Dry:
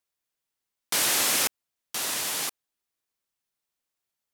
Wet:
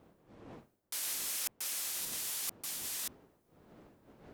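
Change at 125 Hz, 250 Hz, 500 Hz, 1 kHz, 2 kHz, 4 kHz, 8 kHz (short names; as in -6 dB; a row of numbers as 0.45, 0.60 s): -7.5, -11.5, -15.0, -16.5, -15.0, -12.0, -9.0 dB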